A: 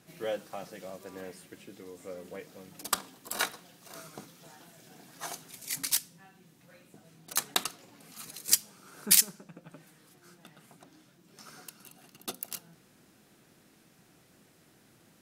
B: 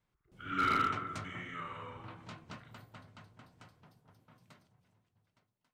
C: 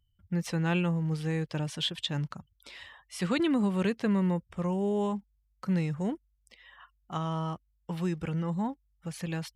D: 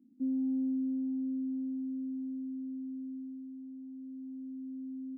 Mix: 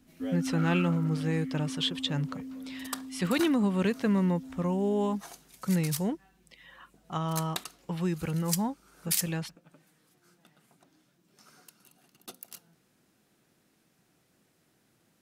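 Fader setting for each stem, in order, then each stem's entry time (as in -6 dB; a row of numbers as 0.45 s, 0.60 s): -7.5 dB, -11.5 dB, +1.0 dB, -2.0 dB; 0.00 s, 0.00 s, 0.00 s, 0.00 s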